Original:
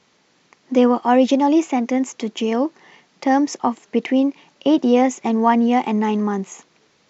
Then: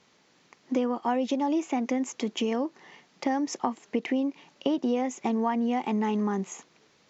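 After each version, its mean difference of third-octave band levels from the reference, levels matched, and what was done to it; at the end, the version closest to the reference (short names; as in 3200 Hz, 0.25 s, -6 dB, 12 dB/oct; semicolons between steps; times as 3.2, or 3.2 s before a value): 2.5 dB: compressor 6:1, threshold -20 dBFS, peak gain reduction 10.5 dB; gain -3.5 dB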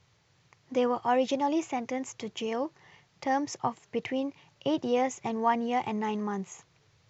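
3.5 dB: resonant low shelf 160 Hz +13.5 dB, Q 3; gain -8.5 dB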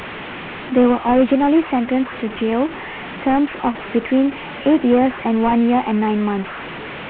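8.0 dB: delta modulation 16 kbps, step -25 dBFS; gain +1.5 dB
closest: first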